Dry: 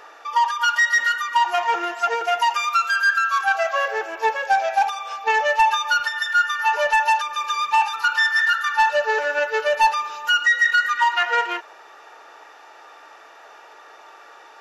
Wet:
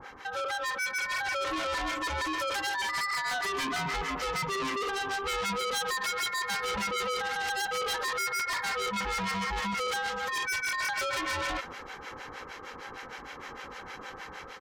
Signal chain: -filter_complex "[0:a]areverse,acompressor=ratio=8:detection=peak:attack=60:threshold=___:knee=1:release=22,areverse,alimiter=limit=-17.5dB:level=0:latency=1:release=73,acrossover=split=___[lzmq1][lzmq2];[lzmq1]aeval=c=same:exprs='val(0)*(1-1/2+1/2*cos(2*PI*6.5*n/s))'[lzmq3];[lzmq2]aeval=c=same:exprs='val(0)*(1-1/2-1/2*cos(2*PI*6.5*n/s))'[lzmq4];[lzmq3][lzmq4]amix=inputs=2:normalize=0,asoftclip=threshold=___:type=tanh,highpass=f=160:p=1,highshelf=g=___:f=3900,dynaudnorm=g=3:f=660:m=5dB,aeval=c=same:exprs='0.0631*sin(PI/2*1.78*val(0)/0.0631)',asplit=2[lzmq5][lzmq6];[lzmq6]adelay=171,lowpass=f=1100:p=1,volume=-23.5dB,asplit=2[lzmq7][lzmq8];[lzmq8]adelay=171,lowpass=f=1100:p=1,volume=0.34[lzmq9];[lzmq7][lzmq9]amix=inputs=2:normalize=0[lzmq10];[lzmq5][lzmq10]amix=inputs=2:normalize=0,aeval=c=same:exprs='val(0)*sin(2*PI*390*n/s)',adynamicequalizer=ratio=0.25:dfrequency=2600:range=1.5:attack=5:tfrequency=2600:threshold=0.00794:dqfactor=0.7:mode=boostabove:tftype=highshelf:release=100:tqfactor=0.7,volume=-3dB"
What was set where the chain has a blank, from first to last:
-26dB, 940, -31dB, -2.5